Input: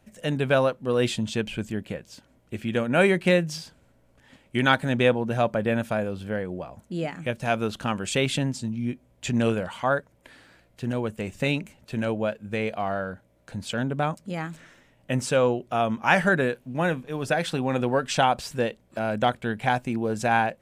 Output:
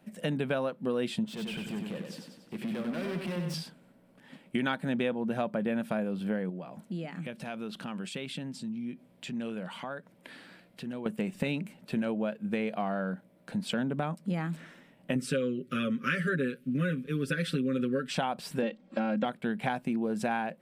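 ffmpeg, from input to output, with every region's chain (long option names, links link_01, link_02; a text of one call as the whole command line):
ffmpeg -i in.wav -filter_complex "[0:a]asettb=1/sr,asplit=3[link_01][link_02][link_03];[link_01]atrim=end=1.244[link_04];[link_02]atrim=start=1.24:end=3.54,asetpts=PTS-STARTPTS,afade=type=in:duration=0.004:curve=qsin,afade=type=out:start_time=2.296:duration=0.004:curve=qsin,acompressor=threshold=-33dB:ratio=2.5:attack=3.2:release=140:knee=1:detection=peak,asoftclip=type=hard:threshold=-36dB,aecho=1:1:95|190|285|380|475|570|665:0.562|0.298|0.158|0.0837|0.0444|0.0235|0.0125,atrim=end_sample=101430[link_05];[link_03]atrim=start=3.536[link_06];[link_04][link_05]acrossfade=duration=0.004:curve1=hsin:curve2=qsin[link_07];[link_07][link_06]acrossfade=duration=0.004:curve1=qsin:curve2=hsin,asettb=1/sr,asplit=3[link_08][link_09][link_10];[link_08]atrim=end=6.494[link_11];[link_09]atrim=start=6.49:end=11.06,asetpts=PTS-STARTPTS,afade=type=in:duration=0.004:curve=qsin,afade=type=out:start_time=4.566:duration=0.004:curve=qsin,equalizer=frequency=3700:width=0.62:gain=3.5,acompressor=threshold=-41dB:ratio=3:attack=3.2:release=140:knee=1:detection=peak[link_12];[link_10]atrim=start=11.056[link_13];[link_11][link_12]acrossfade=duration=0.004:curve1=hsin:curve2=qsin[link_14];[link_14][link_13]acrossfade=duration=0.004:curve1=qsin:curve2=hsin,asettb=1/sr,asplit=3[link_15][link_16][link_17];[link_15]atrim=end=15.154[link_18];[link_16]atrim=start=15.15:end=18.09,asetpts=PTS-STARTPTS,afade=type=in:duration=0.004:curve=qsin,afade=type=out:start_time=2.936:duration=0.004:curve=qsin,asuperstop=centerf=810:order=8:qfactor=1.2,aecho=1:1:7.4:0.95,atrim=end_sample=129654[link_19];[link_17]atrim=start=18.086[link_20];[link_18][link_19]acrossfade=duration=0.004:curve1=hsin:curve2=qsin[link_21];[link_21][link_20]acrossfade=duration=0.004:curve1=qsin:curve2=hsin,asettb=1/sr,asplit=3[link_22][link_23][link_24];[link_22]atrim=end=18.624[link_25];[link_23]atrim=start=18.62:end=19.25,asetpts=PTS-STARTPTS,afade=type=in:duration=0.004:curve=qsin,afade=type=out:start_time=0.626:duration=0.004:curve=qsin,lowpass=frequency=6600:width=0.5412,lowpass=frequency=6600:width=1.3066,aecho=1:1:3.7:0.99,atrim=end_sample=27783[link_26];[link_24]atrim=start=19.246[link_27];[link_25][link_26]acrossfade=duration=0.004:curve1=hsin:curve2=qsin[link_28];[link_28][link_27]acrossfade=duration=0.004:curve1=qsin:curve2=hsin,lowshelf=frequency=120:width_type=q:width=3:gain=-14,acompressor=threshold=-28dB:ratio=5,equalizer=frequency=6600:width_type=o:width=0.46:gain=-8.5" out.wav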